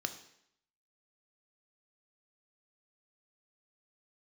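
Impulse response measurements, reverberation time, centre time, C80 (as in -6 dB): 0.70 s, 10 ms, 14.0 dB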